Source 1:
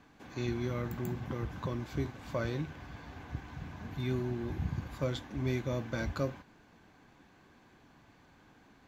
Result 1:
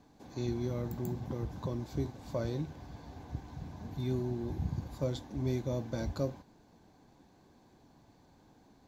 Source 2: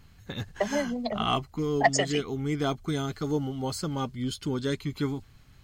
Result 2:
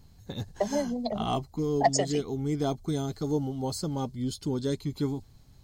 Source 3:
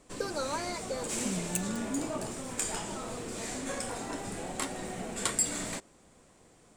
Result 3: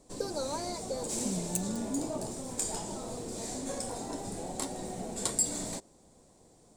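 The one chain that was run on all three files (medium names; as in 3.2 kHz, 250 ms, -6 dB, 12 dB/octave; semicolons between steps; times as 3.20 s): high-order bell 1.9 kHz -10 dB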